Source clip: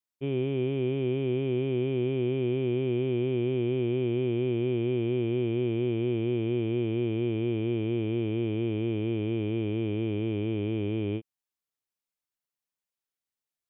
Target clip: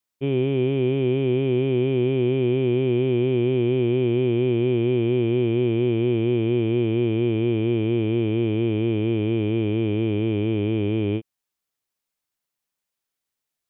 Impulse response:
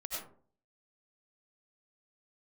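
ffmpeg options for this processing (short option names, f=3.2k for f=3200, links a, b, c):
-af "acontrast=77"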